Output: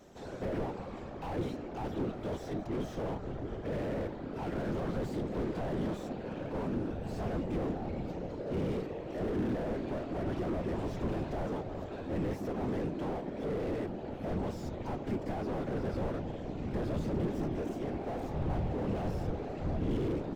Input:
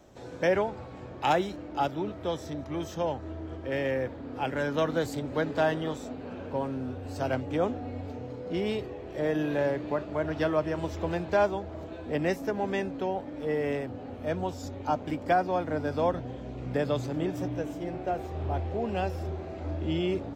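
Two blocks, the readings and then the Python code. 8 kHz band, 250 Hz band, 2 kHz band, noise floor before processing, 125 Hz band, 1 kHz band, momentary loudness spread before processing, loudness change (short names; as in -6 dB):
n/a, -2.5 dB, -11.5 dB, -42 dBFS, -1.5 dB, -9.5 dB, 10 LU, -5.5 dB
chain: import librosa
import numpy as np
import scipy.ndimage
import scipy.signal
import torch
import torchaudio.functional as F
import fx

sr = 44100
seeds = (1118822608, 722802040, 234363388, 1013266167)

y = fx.whisperise(x, sr, seeds[0])
y = fx.slew_limit(y, sr, full_power_hz=10.0)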